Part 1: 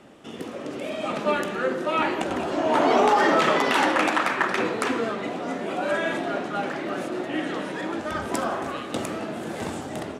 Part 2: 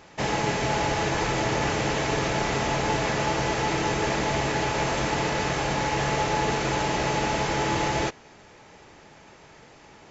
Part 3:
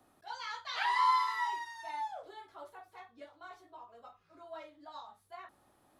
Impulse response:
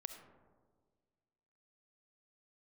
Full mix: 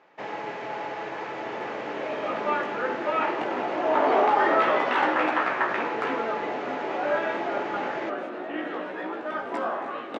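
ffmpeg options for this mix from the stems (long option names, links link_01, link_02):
-filter_complex "[0:a]flanger=delay=16:depth=4.3:speed=0.25,adelay=1200,volume=2dB[link_01];[1:a]volume=-6dB[link_02];[link_01][link_02]amix=inputs=2:normalize=0,highpass=350,lowpass=2200"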